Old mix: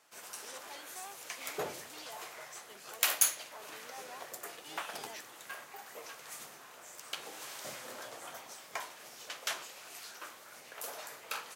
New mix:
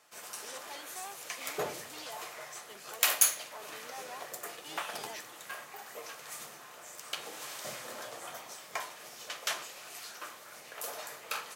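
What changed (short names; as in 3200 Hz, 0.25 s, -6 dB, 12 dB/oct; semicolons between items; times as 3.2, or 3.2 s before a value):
speech +3.5 dB; background: send +11.5 dB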